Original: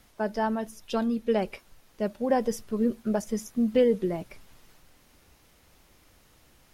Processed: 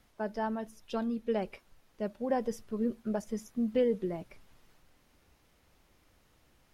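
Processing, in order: high shelf 4400 Hz -5.5 dB; gain -6 dB

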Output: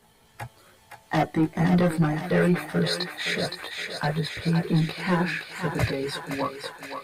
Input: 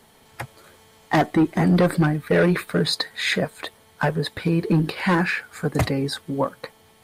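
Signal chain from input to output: chorus voices 6, 0.35 Hz, delay 18 ms, depth 1.4 ms; thinning echo 0.517 s, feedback 67%, high-pass 640 Hz, level -5 dB; gain -2 dB

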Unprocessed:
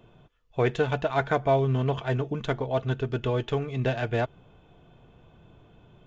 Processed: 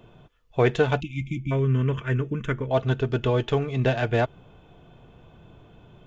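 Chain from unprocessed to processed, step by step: 1.03–2.71 fixed phaser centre 1800 Hz, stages 4; 1–1.51 spectral delete 360–2100 Hz; gain +4 dB

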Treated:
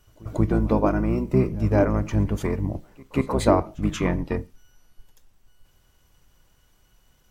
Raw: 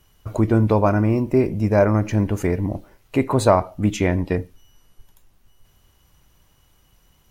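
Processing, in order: harmoniser -12 st -2 dB; on a send: reverse echo 0.184 s -24 dB; on the sum: gain -5 dB

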